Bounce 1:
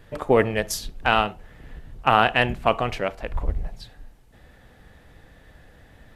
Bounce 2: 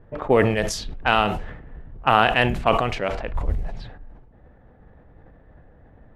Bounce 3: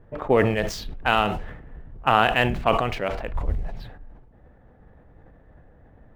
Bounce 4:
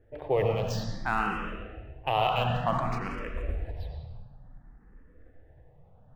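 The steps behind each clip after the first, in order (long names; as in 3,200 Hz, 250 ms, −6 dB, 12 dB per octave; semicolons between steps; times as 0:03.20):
low-pass that shuts in the quiet parts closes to 900 Hz, open at −19.5 dBFS; level that may fall only so fast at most 56 dB per second
running median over 5 samples; level −1.5 dB
on a send at −2.5 dB: convolution reverb RT60 1.4 s, pre-delay 84 ms; on the sum: frequency shifter mixed with the dry sound +0.56 Hz; level −6 dB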